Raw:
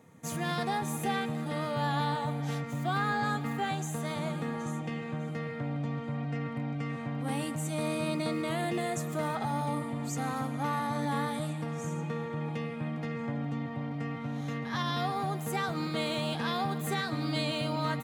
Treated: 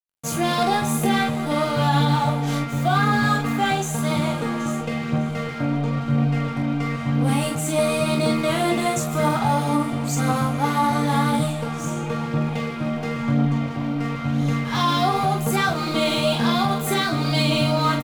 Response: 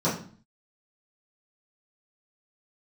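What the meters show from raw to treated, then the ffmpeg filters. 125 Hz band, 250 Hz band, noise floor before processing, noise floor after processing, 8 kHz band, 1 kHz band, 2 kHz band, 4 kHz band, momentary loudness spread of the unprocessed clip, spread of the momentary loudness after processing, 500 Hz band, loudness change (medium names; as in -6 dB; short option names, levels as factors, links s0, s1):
+11.0 dB, +11.5 dB, -38 dBFS, -29 dBFS, +12.0 dB, +11.0 dB, +10.5 dB, +12.0 dB, 5 LU, 6 LU, +11.0 dB, +11.0 dB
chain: -af "aeval=exprs='sgn(val(0))*max(abs(val(0))-0.00447,0)':c=same,aphaser=in_gain=1:out_gain=1:delay=3.6:decay=0.38:speed=0.97:type=triangular,bandreject=f=1800:w=7.9,aecho=1:1:21|44:0.501|0.562,alimiter=level_in=8.91:limit=0.891:release=50:level=0:latency=1,volume=0.376"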